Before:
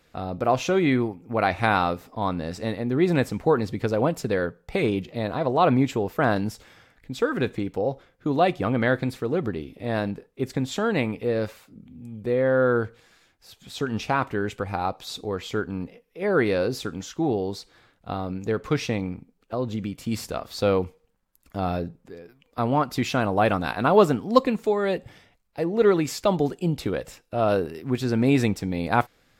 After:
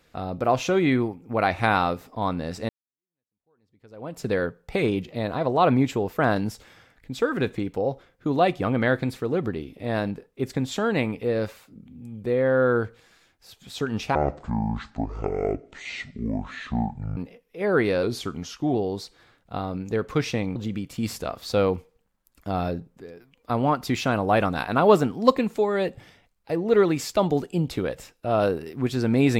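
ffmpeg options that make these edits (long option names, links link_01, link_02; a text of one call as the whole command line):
ffmpeg -i in.wav -filter_complex "[0:a]asplit=7[link_01][link_02][link_03][link_04][link_05][link_06][link_07];[link_01]atrim=end=2.69,asetpts=PTS-STARTPTS,afade=type=out:start_time=2.686:duration=0.004:curve=hsin[link_08];[link_02]atrim=start=2.69:end=14.154,asetpts=PTS-STARTPTS,afade=type=in:duration=1.58:curve=exp[link_09];[link_03]atrim=start=14.15:end=15.78,asetpts=PTS-STARTPTS,asetrate=23814,aresample=44100[link_10];[link_04]atrim=start=15.776:end=16.644[link_11];[link_05]atrim=start=16.64:end=17.3,asetpts=PTS-STARTPTS,asetrate=40572,aresample=44100[link_12];[link_06]atrim=start=17.296:end=19.112[link_13];[link_07]atrim=start=19.638[link_14];[link_08][link_09]concat=n=2:v=0:a=1[link_15];[link_15][link_10]acrossfade=duration=0.004:curve1=hsin:curve2=hsin[link_16];[link_16][link_11]acrossfade=duration=0.004:curve1=hsin:curve2=hsin[link_17];[link_17][link_12]acrossfade=duration=0.004:curve1=hsin:curve2=hsin[link_18];[link_18][link_13]acrossfade=duration=0.004:curve1=hsin:curve2=hsin[link_19];[link_19][link_14]acrossfade=duration=0.004:curve1=hsin:curve2=hsin" out.wav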